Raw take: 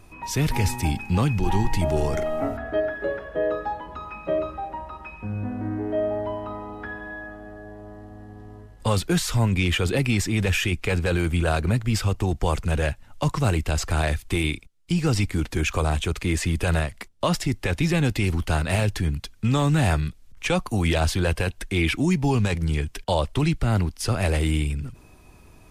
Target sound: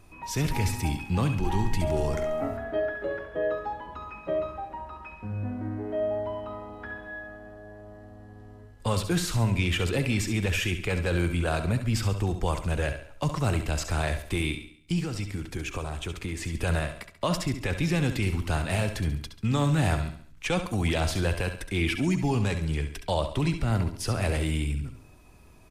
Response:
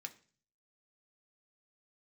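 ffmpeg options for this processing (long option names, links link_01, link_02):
-filter_complex "[0:a]asettb=1/sr,asplit=3[link_01][link_02][link_03];[link_01]atrim=end=15.024[link_04];[link_02]atrim=start=15.02:end=16.55,asetpts=PTS-STARTPTS,afade=type=in:duration=0.004:curve=qsin,afade=type=out:start_time=1.526:duration=0.004:curve=qsin,acompressor=threshold=-25dB:ratio=6[link_05];[link_03]atrim=start=16.546[link_06];[link_04][link_05]acrossfade=duration=0.004:curve1=hsin:curve2=qsin[link_07];[link_07][link_06]acrossfade=duration=0.004:curve1=qsin:curve2=hsin,aecho=1:1:69|138|207|276|345:0.316|0.139|0.0612|0.0269|0.0119,asplit=2[link_08][link_09];[1:a]atrim=start_sample=2205,asetrate=31752,aresample=44100,adelay=66[link_10];[link_09][link_10]afir=irnorm=-1:irlink=0,volume=-12dB[link_11];[link_08][link_11]amix=inputs=2:normalize=0,volume=-4.5dB"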